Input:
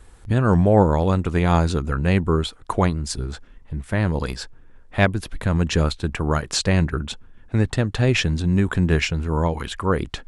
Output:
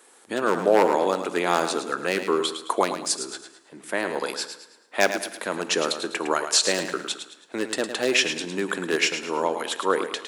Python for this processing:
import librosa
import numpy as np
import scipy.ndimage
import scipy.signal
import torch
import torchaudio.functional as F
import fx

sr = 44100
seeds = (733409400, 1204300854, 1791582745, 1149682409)

p1 = 10.0 ** (-8.5 / 20.0) * (np.abs((x / 10.0 ** (-8.5 / 20.0) + 3.0) % 4.0 - 2.0) - 1.0)
p2 = scipy.signal.sosfilt(scipy.signal.butter(4, 310.0, 'highpass', fs=sr, output='sos'), p1)
p3 = fx.high_shelf(p2, sr, hz=5800.0, db=8.0)
p4 = p3 + fx.echo_feedback(p3, sr, ms=108, feedback_pct=37, wet_db=-9, dry=0)
y = fx.rev_double_slope(p4, sr, seeds[0], early_s=0.98, late_s=2.8, knee_db=-21, drr_db=15.0)